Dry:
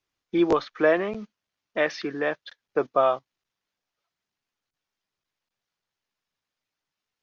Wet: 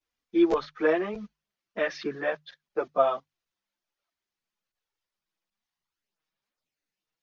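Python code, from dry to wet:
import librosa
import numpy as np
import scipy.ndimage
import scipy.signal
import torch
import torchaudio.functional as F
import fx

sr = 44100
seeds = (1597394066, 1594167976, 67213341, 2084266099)

y = fx.hum_notches(x, sr, base_hz=50, count=3)
y = fx.chorus_voices(y, sr, voices=4, hz=0.58, base_ms=12, depth_ms=3.2, mix_pct=70)
y = y * librosa.db_to_amplitude(-1.5)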